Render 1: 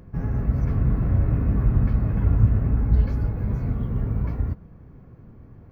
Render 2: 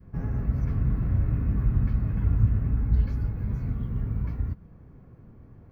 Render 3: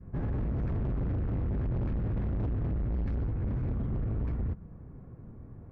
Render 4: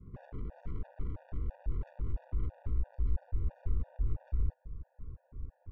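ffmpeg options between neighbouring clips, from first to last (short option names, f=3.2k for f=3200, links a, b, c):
-af "adynamicequalizer=threshold=0.00708:dfrequency=590:dqfactor=0.72:tfrequency=590:tqfactor=0.72:attack=5:release=100:ratio=0.375:range=3.5:mode=cutabove:tftype=bell,volume=-3.5dB"
-filter_complex "[0:a]asplit=2[a][b];[b]alimiter=limit=-20dB:level=0:latency=1:release=81,volume=0dB[c];[a][c]amix=inputs=2:normalize=0,volume=25dB,asoftclip=hard,volume=-25dB,adynamicsmooth=sensitivity=6.5:basefreq=1.8k,volume=-3.5dB"
-af "aeval=exprs='(tanh(63.1*val(0)+0.35)-tanh(0.35))/63.1':c=same,asubboost=boost=11.5:cutoff=54,afftfilt=real='re*gt(sin(2*PI*3*pts/sr)*(1-2*mod(floor(b*sr/1024/480),2)),0)':imag='im*gt(sin(2*PI*3*pts/sr)*(1-2*mod(floor(b*sr/1024/480),2)),0)':win_size=1024:overlap=0.75,volume=-3dB"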